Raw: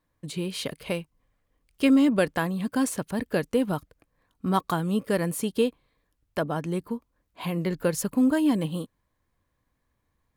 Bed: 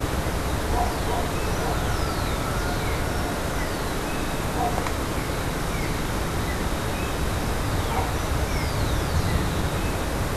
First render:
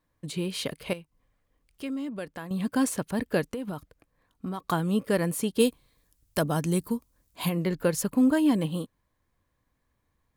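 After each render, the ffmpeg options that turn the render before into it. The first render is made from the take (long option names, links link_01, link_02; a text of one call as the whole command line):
ffmpeg -i in.wav -filter_complex "[0:a]asettb=1/sr,asplit=3[link_01][link_02][link_03];[link_01]atrim=end=0.934[link_04];[link_02]atrim=start=0.93:end=2.51,asetpts=PTS-STARTPTS,afade=type=in:duration=0.004:curve=qsin,afade=type=out:start_time=1.576:duration=0.004:curve=qsin,acompressor=threshold=-56dB:ratio=1.5:attack=3.2:release=140:knee=1:detection=peak[link_05];[link_03]atrim=start=2.506[link_06];[link_04][link_05]acrossfade=duration=0.004:curve1=hsin:curve2=qsin[link_07];[link_07][link_06]acrossfade=duration=0.004:curve1=qsin:curve2=hsin,asettb=1/sr,asplit=3[link_08][link_09][link_10];[link_08]atrim=end=3.484[link_11];[link_09]atrim=start=3.48:end=4.62,asetpts=PTS-STARTPTS,afade=type=in:duration=0.004:curve=qsin,afade=type=out:start_time=1.136:duration=0.004:curve=qsin,acompressor=threshold=-29dB:ratio=12:attack=3.2:release=140:knee=1:detection=peak[link_12];[link_10]atrim=start=4.616[link_13];[link_11][link_12]acrossfade=duration=0.004:curve1=hsin:curve2=qsin[link_14];[link_14][link_13]acrossfade=duration=0.004:curve1=qsin:curve2=hsin,asplit=3[link_15][link_16][link_17];[link_15]afade=type=out:start_time=5.59:duration=0.02[link_18];[link_16]bass=frequency=250:gain=5,treble=frequency=4000:gain=14,afade=type=in:start_time=5.59:duration=0.02,afade=type=out:start_time=7.48:duration=0.02[link_19];[link_17]afade=type=in:start_time=7.48:duration=0.02[link_20];[link_18][link_19][link_20]amix=inputs=3:normalize=0" out.wav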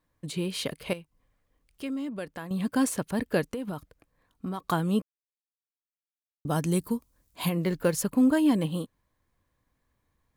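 ffmpeg -i in.wav -filter_complex "[0:a]asettb=1/sr,asplit=3[link_01][link_02][link_03];[link_01]atrim=end=7.634[link_04];[link_02]atrim=start=7.63:end=8.04,asetpts=PTS-STARTPTS,afade=type=in:duration=0.004:curve=qsin,afade=type=out:start_time=0.406:duration=0.004:curve=qsin,acrusher=bits=8:mode=log:mix=0:aa=0.000001[link_05];[link_03]atrim=start=8.036[link_06];[link_04][link_05]acrossfade=duration=0.004:curve1=hsin:curve2=qsin[link_07];[link_07][link_06]acrossfade=duration=0.004:curve1=qsin:curve2=hsin,asplit=3[link_08][link_09][link_10];[link_08]atrim=end=5.02,asetpts=PTS-STARTPTS,afade=type=out:start_time=5.016:duration=0.004:curve=hsin[link_11];[link_09]atrim=start=5.02:end=6.45,asetpts=PTS-STARTPTS,volume=0[link_12];[link_10]atrim=start=6.45,asetpts=PTS-STARTPTS,afade=type=in:duration=0.004:curve=hsin[link_13];[link_11][link_12][link_13]concat=n=3:v=0:a=1" out.wav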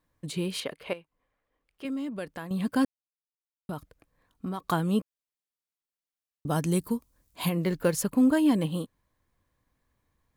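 ffmpeg -i in.wav -filter_complex "[0:a]asettb=1/sr,asplit=3[link_01][link_02][link_03];[link_01]atrim=end=0.604[link_04];[link_02]atrim=start=0.6:end=1.85,asetpts=PTS-STARTPTS,afade=type=in:duration=0.004:curve=qsin,afade=type=out:start_time=1.246:duration=0.004:curve=qsin,bass=frequency=250:gain=-12,treble=frequency=4000:gain=-12[link_05];[link_03]atrim=start=1.846[link_06];[link_04][link_05]acrossfade=duration=0.004:curve1=hsin:curve2=qsin[link_07];[link_07][link_06]acrossfade=duration=0.004:curve1=qsin:curve2=hsin,asplit=3[link_08][link_09][link_10];[link_08]atrim=end=2.85,asetpts=PTS-STARTPTS,afade=type=out:start_time=2.846:duration=0.004:curve=hsin[link_11];[link_09]atrim=start=2.85:end=3.69,asetpts=PTS-STARTPTS,volume=0[link_12];[link_10]atrim=start=3.69,asetpts=PTS-STARTPTS,afade=type=in:duration=0.004:curve=hsin[link_13];[link_11][link_12][link_13]concat=n=3:v=0:a=1" out.wav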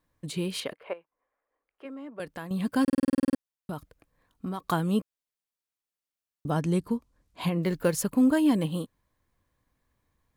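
ffmpeg -i in.wav -filter_complex "[0:a]asettb=1/sr,asplit=3[link_01][link_02][link_03];[link_01]atrim=end=0.734[link_04];[link_02]atrim=start=0.73:end=2.2,asetpts=PTS-STARTPTS,afade=type=in:duration=0.004:curve=qsin,afade=type=out:start_time=1.466:duration=0.004:curve=qsin,acrossover=split=350 2100:gain=0.126 1 0.112[link_05][link_06][link_07];[link_05][link_06][link_07]amix=inputs=3:normalize=0[link_08];[link_03]atrim=start=2.196[link_09];[link_04][link_08]acrossfade=duration=0.004:curve1=hsin:curve2=qsin[link_10];[link_10][link_09]acrossfade=duration=0.004:curve1=qsin:curve2=hsin,asettb=1/sr,asplit=3[link_11][link_12][link_13];[link_11]atrim=end=6.504[link_14];[link_12]atrim=start=6.5:end=7.63,asetpts=PTS-STARTPTS,afade=type=in:duration=0.004:curve=qsin,afade=type=out:start_time=1.126:duration=0.004:curve=qsin,aemphasis=mode=reproduction:type=50fm[link_15];[link_13]atrim=start=7.626[link_16];[link_14][link_15]acrossfade=duration=0.004:curve1=hsin:curve2=qsin[link_17];[link_17][link_16]acrossfade=duration=0.004:curve1=qsin:curve2=hsin,asplit=12[link_18][link_19][link_20][link_21][link_22][link_23][link_24][link_25][link_26][link_27][link_28][link_29];[link_18]atrim=end=2.882[link_30];[link_19]atrim=start=2.828:end=2.882[link_31];[link_20]atrim=start=2.828:end=2.882[link_32];[link_21]atrim=start=2.828:end=2.882[link_33];[link_22]atrim=start=2.828:end=2.882[link_34];[link_23]atrim=start=2.828:end=2.882[link_35];[link_24]atrim=start=2.828:end=2.882[link_36];[link_25]atrim=start=2.828:end=2.882[link_37];[link_26]atrim=start=2.828:end=2.882[link_38];[link_27]atrim=start=2.828:end=2.882[link_39];[link_28]atrim=start=2.828:end=2.882[link_40];[link_29]atrim=start=3.378[link_41];[link_30][link_31]acrossfade=duration=0.004:curve1=hsin:curve2=hsin[link_42];[link_42][link_32]acrossfade=duration=0.004:curve1=hsin:curve2=hsin[link_43];[link_43][link_33]acrossfade=duration=0.004:curve1=hsin:curve2=hsin[link_44];[link_44][link_34]acrossfade=duration=0.004:curve1=hsin:curve2=hsin[link_45];[link_45][link_35]acrossfade=duration=0.004:curve1=hsin:curve2=hsin[link_46];[link_46][link_36]acrossfade=duration=0.004:curve1=hsin:curve2=hsin[link_47];[link_47][link_37]acrossfade=duration=0.004:curve1=hsin:curve2=hsin[link_48];[link_48][link_38]acrossfade=duration=0.004:curve1=hsin:curve2=hsin[link_49];[link_49][link_39]acrossfade=duration=0.004:curve1=hsin:curve2=hsin[link_50];[link_50][link_40]acrossfade=duration=0.004:curve1=hsin:curve2=hsin[link_51];[link_51][link_41]acrossfade=duration=0.004:curve1=hsin:curve2=hsin" out.wav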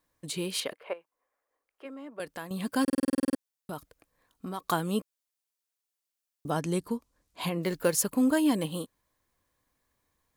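ffmpeg -i in.wav -af "bass=frequency=250:gain=-7,treble=frequency=4000:gain=5" out.wav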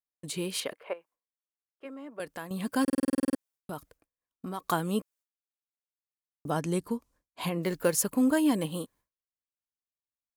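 ffmpeg -i in.wav -af "agate=range=-33dB:threshold=-54dB:ratio=3:detection=peak,equalizer=frequency=4000:width=1.5:gain=-2.5" out.wav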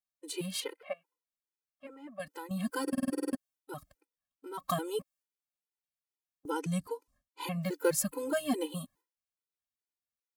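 ffmpeg -i in.wav -af "afftfilt=real='re*gt(sin(2*PI*2.4*pts/sr)*(1-2*mod(floor(b*sr/1024/260),2)),0)':imag='im*gt(sin(2*PI*2.4*pts/sr)*(1-2*mod(floor(b*sr/1024/260),2)),0)':win_size=1024:overlap=0.75" out.wav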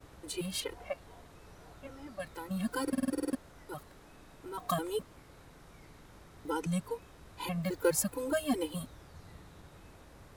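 ffmpeg -i in.wav -i bed.wav -filter_complex "[1:a]volume=-29dB[link_01];[0:a][link_01]amix=inputs=2:normalize=0" out.wav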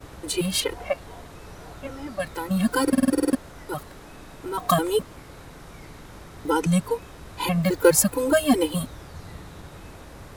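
ffmpeg -i in.wav -af "volume=12dB" out.wav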